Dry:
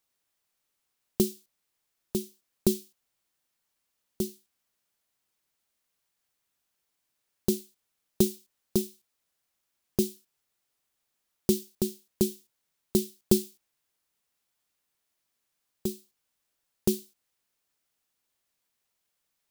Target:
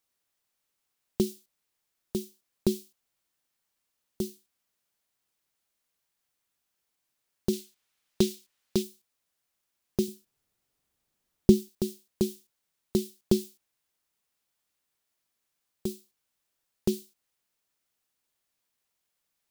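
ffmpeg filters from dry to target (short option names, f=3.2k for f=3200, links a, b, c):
-filter_complex "[0:a]asettb=1/sr,asplit=3[a][b][c];[a]atrim=end=10.084[d];[b]atrim=start=10.08:end=11.69,asetpts=PTS-STARTPTS,afade=t=in:d=0.004:c=qsin,afade=t=out:st=1.606:d=0.004:c=qsin,lowshelf=f=410:g=11[e];[c]atrim=start=11.686[f];[d][e]acrossfade=d=0.004:c1=hsin:c2=qsin[g];[g][f]acrossfade=d=0.004:c1=qsin:c2=hsin,acrossover=split=5900[h][i];[i]acompressor=threshold=-37dB:ratio=4:attack=1:release=60[j];[h][j]amix=inputs=2:normalize=0,asettb=1/sr,asplit=3[k][l][m];[k]atrim=end=7.534[n];[l]atrim=start=7.53:end=8.83,asetpts=PTS-STARTPTS,afade=t=in:d=0.004:c=qsin,afade=t=out:st=1.296:d=0.004:c=qsin,equalizer=f=2.6k:t=o:w=2.8:g=7[o];[m]atrim=start=8.826[p];[n][o]acrossfade=d=0.004:c1=hsin:c2=qsin[q];[q][p]acrossfade=d=0.004:c1=qsin:c2=hsin,volume=-1dB"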